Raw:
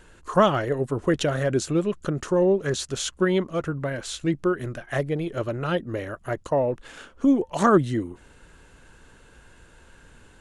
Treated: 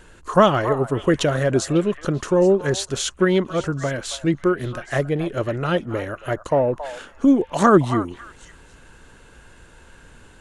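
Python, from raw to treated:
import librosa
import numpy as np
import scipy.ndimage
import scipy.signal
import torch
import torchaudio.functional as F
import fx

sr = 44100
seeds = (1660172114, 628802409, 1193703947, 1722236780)

y = fx.echo_stepped(x, sr, ms=274, hz=920.0, octaves=1.4, feedback_pct=70, wet_db=-8.5)
y = F.gain(torch.from_numpy(y), 4.0).numpy()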